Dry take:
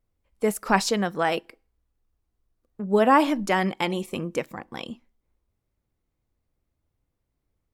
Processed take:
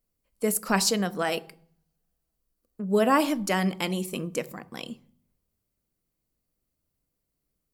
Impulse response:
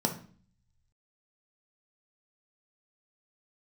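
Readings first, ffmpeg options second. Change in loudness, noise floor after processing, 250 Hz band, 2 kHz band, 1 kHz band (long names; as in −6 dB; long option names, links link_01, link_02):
−2.0 dB, −81 dBFS, −1.5 dB, −3.5 dB, −5.5 dB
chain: -filter_complex "[0:a]crystalizer=i=3:c=0,asplit=2[link_01][link_02];[1:a]atrim=start_sample=2205,asetrate=35721,aresample=44100[link_03];[link_02][link_03]afir=irnorm=-1:irlink=0,volume=-18dB[link_04];[link_01][link_04]amix=inputs=2:normalize=0,volume=-6.5dB"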